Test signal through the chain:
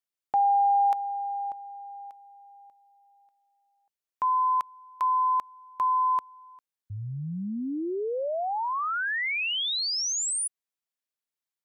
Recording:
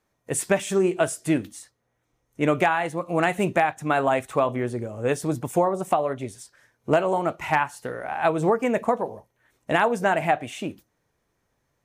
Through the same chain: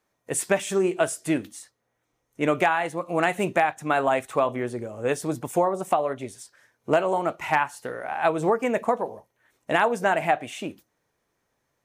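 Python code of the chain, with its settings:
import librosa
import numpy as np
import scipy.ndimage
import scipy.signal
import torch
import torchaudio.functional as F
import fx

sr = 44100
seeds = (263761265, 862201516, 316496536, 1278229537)

y = fx.low_shelf(x, sr, hz=160.0, db=-9.0)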